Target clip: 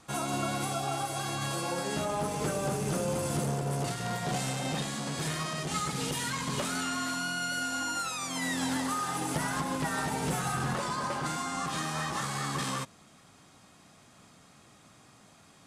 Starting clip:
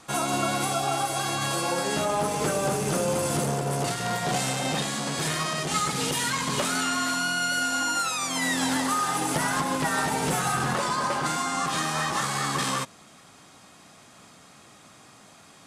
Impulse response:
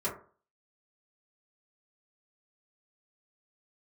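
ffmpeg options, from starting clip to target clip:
-af "lowshelf=f=190:g=7.5,volume=-7dB"

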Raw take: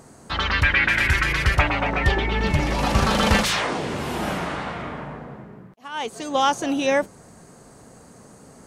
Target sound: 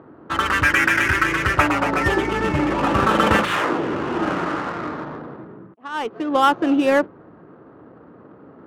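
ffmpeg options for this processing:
-af "highpass=120,equalizer=f=140:t=q:w=4:g=-4,equalizer=f=210:t=q:w=4:g=-5,equalizer=f=320:t=q:w=4:g=8,equalizer=f=720:t=q:w=4:g=-4,equalizer=f=1.3k:t=q:w=4:g=5,equalizer=f=2.2k:t=q:w=4:g=-5,lowpass=f=2.9k:w=0.5412,lowpass=f=2.9k:w=1.3066,adynamicsmooth=sensitivity=6:basefreq=1.6k,volume=3.5dB"

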